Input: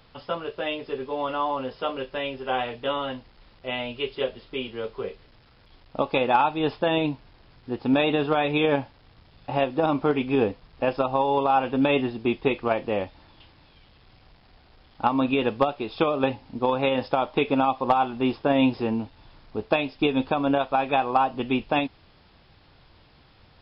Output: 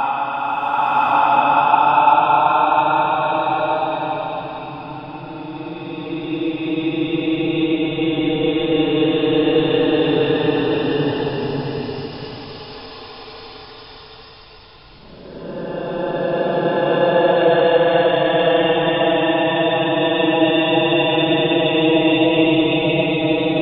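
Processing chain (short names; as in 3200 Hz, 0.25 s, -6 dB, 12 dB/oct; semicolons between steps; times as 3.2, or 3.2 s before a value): Paulstretch 38×, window 0.05 s, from 6.41; bloom reverb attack 1.13 s, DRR -6.5 dB; gain -1.5 dB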